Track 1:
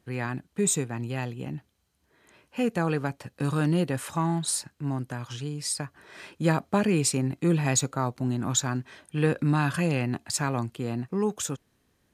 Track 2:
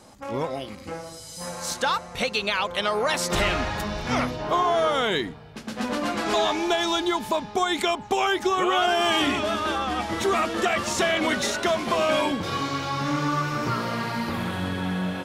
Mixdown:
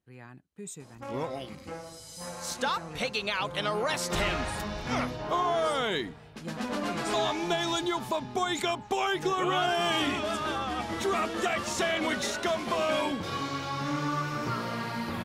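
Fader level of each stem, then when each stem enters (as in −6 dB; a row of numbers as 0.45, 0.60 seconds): −17.0, −5.5 decibels; 0.00, 0.80 seconds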